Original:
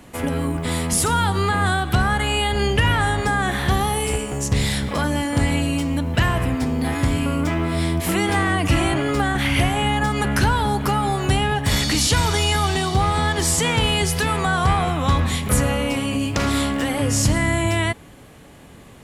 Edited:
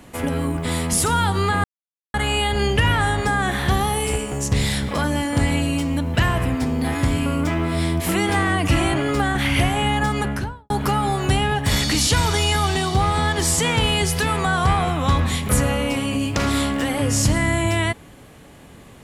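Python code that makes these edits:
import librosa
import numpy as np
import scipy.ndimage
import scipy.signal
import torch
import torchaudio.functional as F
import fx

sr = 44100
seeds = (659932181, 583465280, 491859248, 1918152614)

y = fx.studio_fade_out(x, sr, start_s=10.09, length_s=0.61)
y = fx.edit(y, sr, fx.silence(start_s=1.64, length_s=0.5), tone=tone)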